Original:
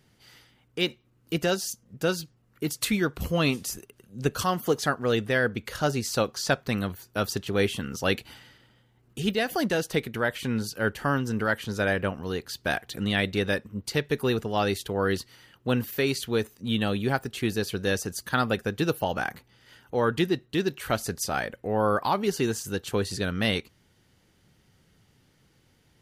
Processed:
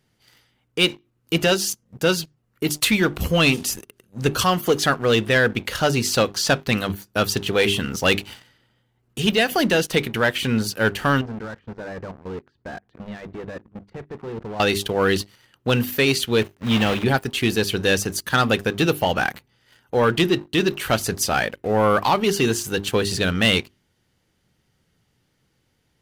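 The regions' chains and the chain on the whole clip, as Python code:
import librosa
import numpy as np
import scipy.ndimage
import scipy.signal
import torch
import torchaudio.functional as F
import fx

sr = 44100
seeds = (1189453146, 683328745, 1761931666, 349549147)

y = fx.chain(x, sr, fx.level_steps(step_db=16),
    fx.clip_hard(threshold_db=-35.0),
    fx.lowpass(hz=1400.0, slope=12), at=(11.21, 14.6))
y = fx.chain(y, sr, fx.block_float(bits=3),
    fx.bass_treble(bass_db=1, treble_db=-14), at=(16.41, 17.06))
y = fx.dynamic_eq(y, sr, hz=2900.0, q=1.7, threshold_db=-46.0, ratio=4.0, max_db=6)
y = fx.hum_notches(y, sr, base_hz=50, count=8)
y = fx.leveller(y, sr, passes=2)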